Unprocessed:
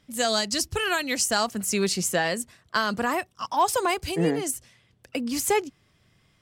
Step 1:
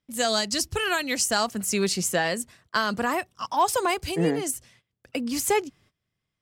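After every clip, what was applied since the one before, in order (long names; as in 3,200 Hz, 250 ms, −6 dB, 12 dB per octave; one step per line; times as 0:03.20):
noise gate −56 dBFS, range −19 dB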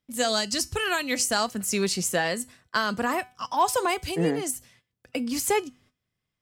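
tuned comb filter 250 Hz, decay 0.31 s, harmonics all, mix 50%
level +4.5 dB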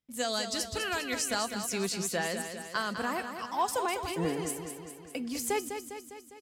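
repeating echo 202 ms, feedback 59%, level −8 dB
level −7 dB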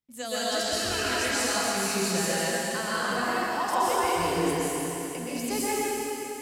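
dense smooth reverb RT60 3 s, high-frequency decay 0.95×, pre-delay 110 ms, DRR −9.5 dB
level −4 dB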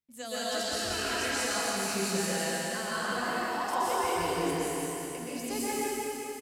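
single-tap delay 176 ms −5.5 dB
level −5 dB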